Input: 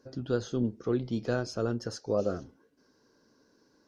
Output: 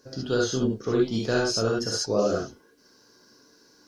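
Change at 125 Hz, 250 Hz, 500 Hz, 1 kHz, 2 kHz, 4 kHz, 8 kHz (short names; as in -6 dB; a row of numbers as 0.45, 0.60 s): +3.0, +5.0, +6.5, +8.0, +10.0, +15.0, +15.5 dB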